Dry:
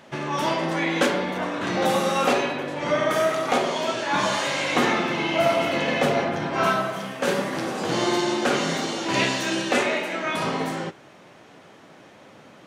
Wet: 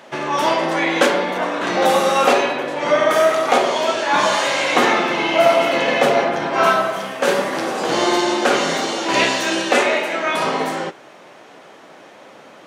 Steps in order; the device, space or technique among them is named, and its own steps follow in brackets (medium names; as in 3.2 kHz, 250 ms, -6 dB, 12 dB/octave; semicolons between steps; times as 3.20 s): filter by subtraction (in parallel: low-pass 570 Hz 12 dB/octave + polarity flip); on the sum: trim +5.5 dB